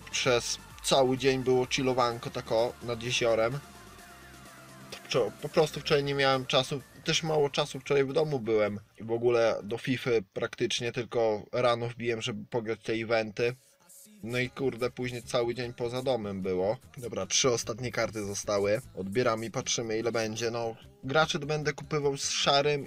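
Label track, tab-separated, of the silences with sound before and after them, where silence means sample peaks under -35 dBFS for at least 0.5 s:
3.590000	4.920000	silence
13.520000	14.240000	silence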